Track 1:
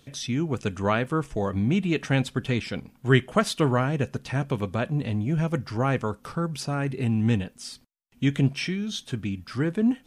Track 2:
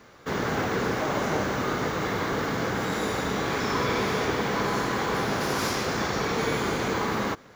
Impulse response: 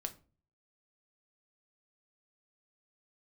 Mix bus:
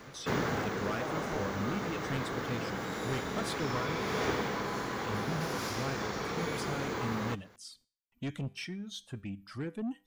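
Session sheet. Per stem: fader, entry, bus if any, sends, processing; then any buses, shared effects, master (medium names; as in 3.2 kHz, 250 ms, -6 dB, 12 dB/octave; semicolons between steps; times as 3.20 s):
-5.5 dB, 0.00 s, muted 3.98–5.03 s, no send, reverb removal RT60 1.4 s; feedback comb 99 Hz, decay 0.42 s, harmonics all, mix 40%; saturation -25.5 dBFS, distortion -10 dB
+2.0 dB, 0.00 s, no send, auto duck -11 dB, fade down 0.75 s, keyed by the first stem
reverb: none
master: none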